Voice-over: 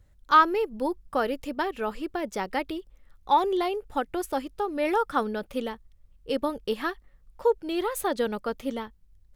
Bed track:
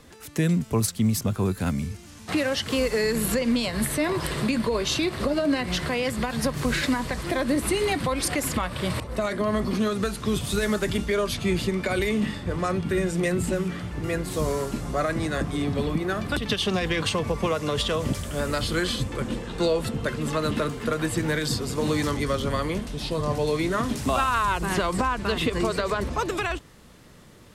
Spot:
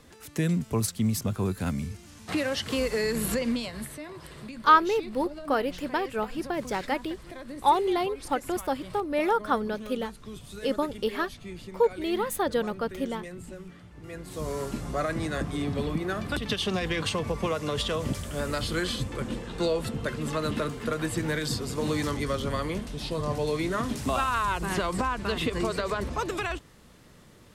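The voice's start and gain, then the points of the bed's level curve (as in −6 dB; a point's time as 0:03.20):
4.35 s, 0.0 dB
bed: 0:03.45 −3.5 dB
0:04.05 −16.5 dB
0:13.94 −16.5 dB
0:14.67 −3.5 dB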